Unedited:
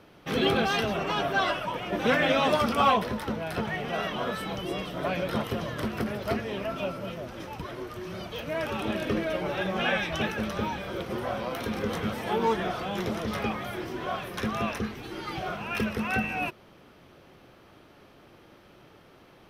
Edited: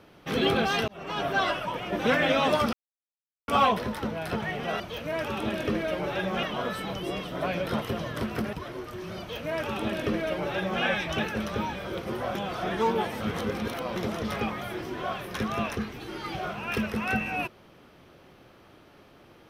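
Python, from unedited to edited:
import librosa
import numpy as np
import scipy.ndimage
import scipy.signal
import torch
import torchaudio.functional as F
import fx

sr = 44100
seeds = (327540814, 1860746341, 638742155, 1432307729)

y = fx.edit(x, sr, fx.fade_in_span(start_s=0.88, length_s=0.4),
    fx.insert_silence(at_s=2.73, length_s=0.75),
    fx.cut(start_s=6.15, length_s=1.41),
    fx.duplicate(start_s=8.22, length_s=1.63, to_s=4.05),
    fx.reverse_span(start_s=11.38, length_s=1.61), tone=tone)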